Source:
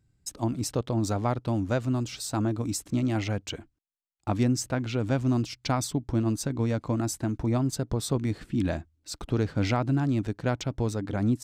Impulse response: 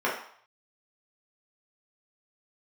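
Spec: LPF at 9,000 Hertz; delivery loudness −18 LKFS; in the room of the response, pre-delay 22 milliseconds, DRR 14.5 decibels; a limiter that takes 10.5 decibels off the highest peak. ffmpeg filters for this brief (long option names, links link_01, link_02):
-filter_complex "[0:a]lowpass=9000,alimiter=limit=-23.5dB:level=0:latency=1,asplit=2[link_01][link_02];[1:a]atrim=start_sample=2205,adelay=22[link_03];[link_02][link_03]afir=irnorm=-1:irlink=0,volume=-28dB[link_04];[link_01][link_04]amix=inputs=2:normalize=0,volume=15dB"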